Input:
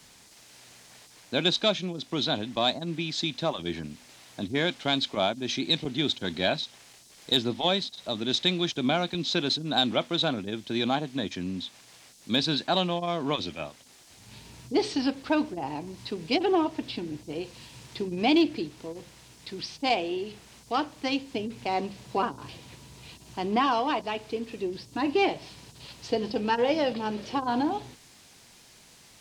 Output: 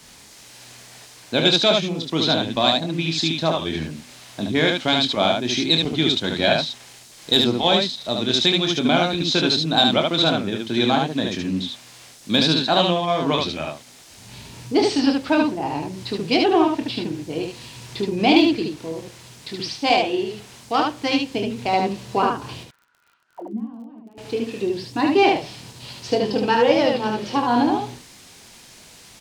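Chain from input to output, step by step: 22.63–24.18 auto-wah 220–1800 Hz, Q 15, down, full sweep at -25.5 dBFS; early reflections 25 ms -7.5 dB, 74 ms -3 dB; crackle 49/s -49 dBFS; gain +6 dB

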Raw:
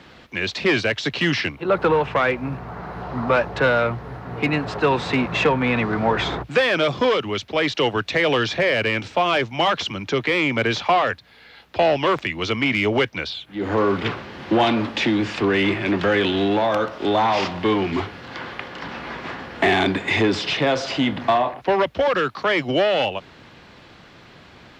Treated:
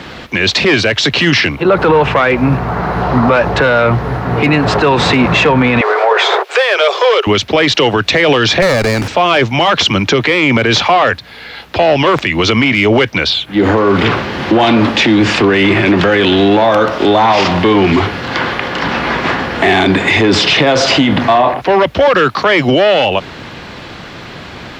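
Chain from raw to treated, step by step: 5.81–7.27 steep high-pass 380 Hz 96 dB/oct; maximiser +18 dB; 8.62–9.08 running maximum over 9 samples; gain -1 dB

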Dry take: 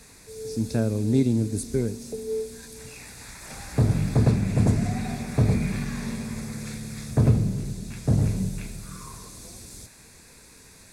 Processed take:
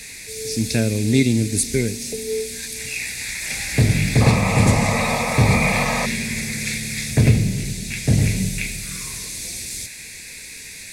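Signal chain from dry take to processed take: painted sound noise, 4.2–6.06, 450–1300 Hz -26 dBFS; resonant high shelf 1600 Hz +9.5 dB, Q 3; gain +4.5 dB

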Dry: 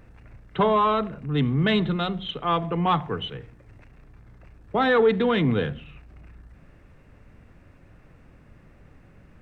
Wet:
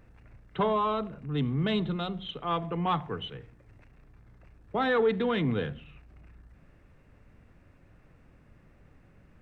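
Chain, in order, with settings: 0.72–2.51 dynamic EQ 1800 Hz, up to -6 dB, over -40 dBFS, Q 1.8; gain -6 dB

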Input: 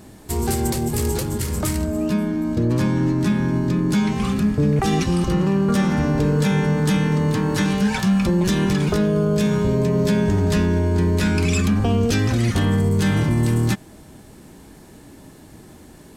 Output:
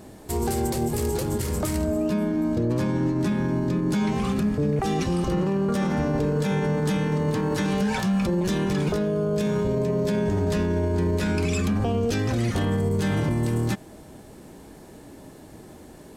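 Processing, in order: bell 550 Hz +6 dB 1.5 oct; limiter -13.5 dBFS, peak gain reduction 6.5 dB; gain -3 dB

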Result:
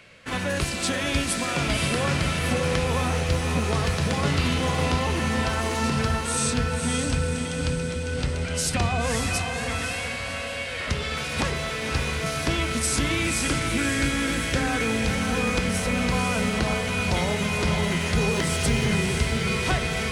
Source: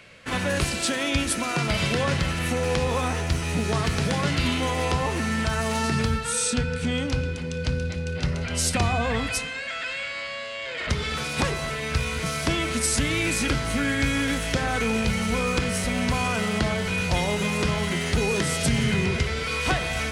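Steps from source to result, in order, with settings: 18.31–18.86 added noise pink -46 dBFS; diffused feedback echo 0.549 s, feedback 54%, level -4.5 dB; gain -1.5 dB

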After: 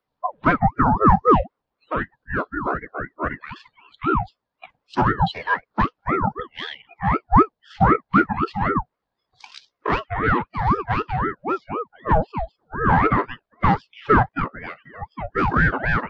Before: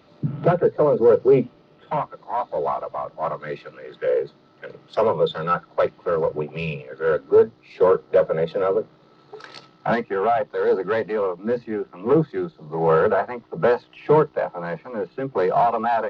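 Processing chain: spectral noise reduction 28 dB; ring modulator with a swept carrier 590 Hz, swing 50%, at 3.9 Hz; gain +3.5 dB

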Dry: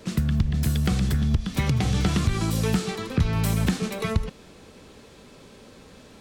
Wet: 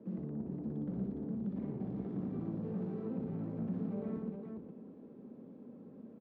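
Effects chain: tube stage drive 32 dB, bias 0.4; ladder band-pass 260 Hz, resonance 45%; tapped delay 61/119/411 ms -3.5/-5.5/-4 dB; gain +6 dB

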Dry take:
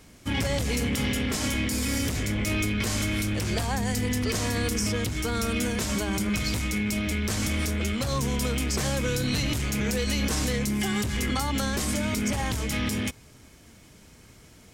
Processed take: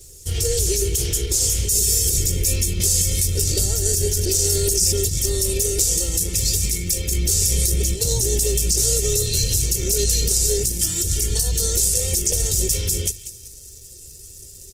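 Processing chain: EQ curve 120 Hz 0 dB, 290 Hz -24 dB, 460 Hz -5 dB, 1200 Hz -27 dB, 2600 Hz -12 dB, 6800 Hz +10 dB; formant-preserving pitch shift -3 st; notches 50/100 Hz; comb 2.2 ms, depth 59%; on a send: thin delay 0.189 s, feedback 34%, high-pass 1700 Hz, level -14.5 dB; on the sum: maximiser +14.5 dB; gain -7 dB; Opus 16 kbps 48000 Hz

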